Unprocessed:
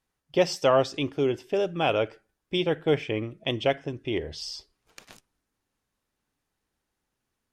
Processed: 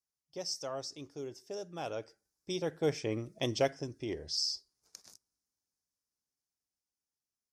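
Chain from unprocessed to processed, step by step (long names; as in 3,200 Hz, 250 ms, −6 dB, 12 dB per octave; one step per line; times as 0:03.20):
source passing by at 0:03.39, 6 m/s, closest 3 metres
high-pass filter 42 Hz
high shelf with overshoot 4,000 Hz +10 dB, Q 3
level −4 dB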